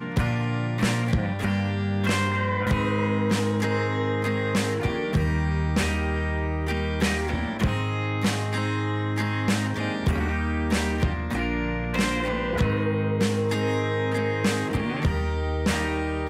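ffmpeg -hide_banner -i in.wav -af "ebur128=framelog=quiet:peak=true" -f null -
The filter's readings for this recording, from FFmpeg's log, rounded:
Integrated loudness:
  I:         -25.3 LUFS
  Threshold: -35.3 LUFS
Loudness range:
  LRA:         1.4 LU
  Threshold: -45.3 LUFS
  LRA low:   -26.0 LUFS
  LRA high:  -24.6 LUFS
True peak:
  Peak:      -13.8 dBFS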